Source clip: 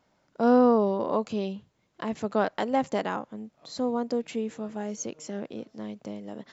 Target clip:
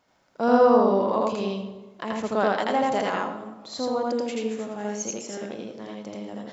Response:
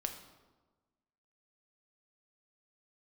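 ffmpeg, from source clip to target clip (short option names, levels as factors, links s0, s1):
-filter_complex "[0:a]lowshelf=f=390:g=-7,asplit=2[s0][s1];[1:a]atrim=start_sample=2205,adelay=82[s2];[s1][s2]afir=irnorm=-1:irlink=0,volume=1.12[s3];[s0][s3]amix=inputs=2:normalize=0,volume=1.33"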